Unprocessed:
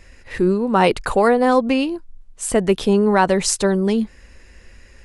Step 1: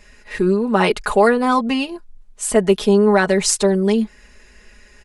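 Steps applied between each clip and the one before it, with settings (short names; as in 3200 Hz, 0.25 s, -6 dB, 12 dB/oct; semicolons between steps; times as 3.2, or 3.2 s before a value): low shelf 230 Hz -7 dB; comb 4.8 ms, depth 81%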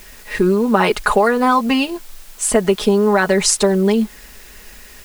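dynamic EQ 1200 Hz, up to +4 dB, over -26 dBFS, Q 0.89; compressor, threshold -15 dBFS, peak gain reduction 8.5 dB; requantised 8-bit, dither triangular; gain +4.5 dB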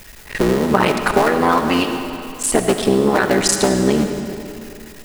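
cycle switcher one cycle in 3, muted; on a send at -6 dB: reverb RT60 2.7 s, pre-delay 30 ms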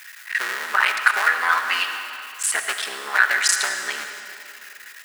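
resonant high-pass 1600 Hz, resonance Q 2.9; gain -2.5 dB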